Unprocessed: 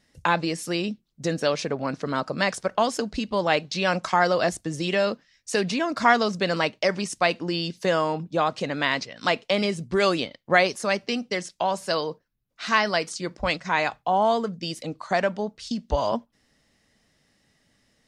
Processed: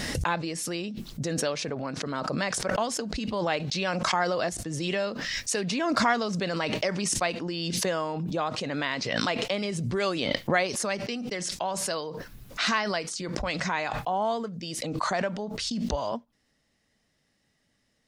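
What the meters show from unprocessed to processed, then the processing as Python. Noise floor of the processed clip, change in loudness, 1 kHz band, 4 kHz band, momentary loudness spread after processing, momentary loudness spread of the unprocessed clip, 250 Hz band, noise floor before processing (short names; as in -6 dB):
-72 dBFS, -4.0 dB, -5.5 dB, -2.0 dB, 7 LU, 8 LU, -2.5 dB, -70 dBFS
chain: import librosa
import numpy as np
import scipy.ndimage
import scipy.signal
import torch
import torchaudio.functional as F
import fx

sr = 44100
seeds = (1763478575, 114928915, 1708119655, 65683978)

y = fx.pre_swell(x, sr, db_per_s=21.0)
y = y * 10.0 ** (-6.5 / 20.0)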